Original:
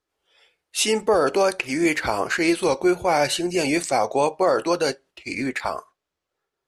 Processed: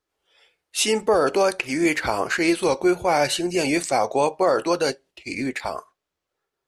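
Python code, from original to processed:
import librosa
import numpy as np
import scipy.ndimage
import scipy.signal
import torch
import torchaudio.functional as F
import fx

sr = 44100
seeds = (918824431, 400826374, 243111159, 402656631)

y = fx.peak_eq(x, sr, hz=1300.0, db=-6.0, octaves=0.93, at=(4.9, 5.75))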